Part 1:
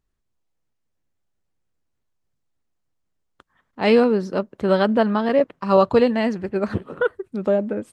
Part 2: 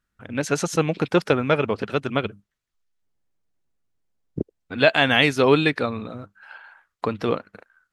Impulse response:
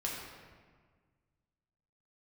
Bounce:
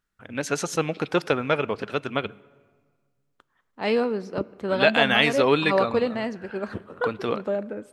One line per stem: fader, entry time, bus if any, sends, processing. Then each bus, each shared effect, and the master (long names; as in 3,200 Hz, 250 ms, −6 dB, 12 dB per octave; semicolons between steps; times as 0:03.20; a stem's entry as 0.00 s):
−6.0 dB, 0.00 s, send −20.5 dB, no processing
−2.0 dB, 0.00 s, send −23 dB, no processing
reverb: on, RT60 1.6 s, pre-delay 4 ms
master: low-shelf EQ 310 Hz −6 dB